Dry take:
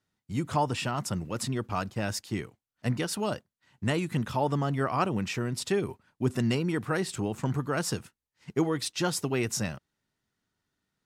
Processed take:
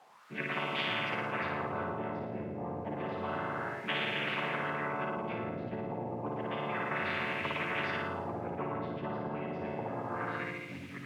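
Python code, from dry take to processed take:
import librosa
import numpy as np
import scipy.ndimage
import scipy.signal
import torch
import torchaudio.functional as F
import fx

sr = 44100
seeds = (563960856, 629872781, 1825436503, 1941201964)

y = fx.chord_vocoder(x, sr, chord='major triad', root=50)
y = scipy.signal.sosfilt(scipy.signal.butter(4, 3100.0, 'lowpass', fs=sr, output='sos'), y)
y = fx.peak_eq(y, sr, hz=1600.0, db=-8.5, octaves=0.72)
y = fx.hum_notches(y, sr, base_hz=60, count=3)
y = fx.room_flutter(y, sr, wall_m=9.6, rt60_s=1.1)
y = fx.echo_pitch(y, sr, ms=401, semitones=-4, count=2, db_per_echo=-6.0)
y = fx.quant_dither(y, sr, seeds[0], bits=12, dither='triangular')
y = fx.wah_lfo(y, sr, hz=0.3, low_hz=210.0, high_hz=2400.0, q=3.5)
y = fx.spectral_comp(y, sr, ratio=10.0)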